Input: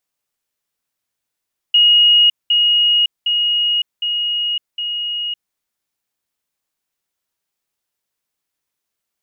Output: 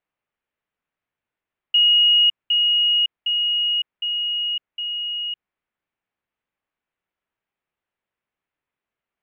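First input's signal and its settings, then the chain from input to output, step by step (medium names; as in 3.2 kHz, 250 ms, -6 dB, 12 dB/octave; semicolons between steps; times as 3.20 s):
level ladder 2.88 kHz -7.5 dBFS, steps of -3 dB, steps 5, 0.56 s 0.20 s
low-pass 2.7 kHz 24 dB/octave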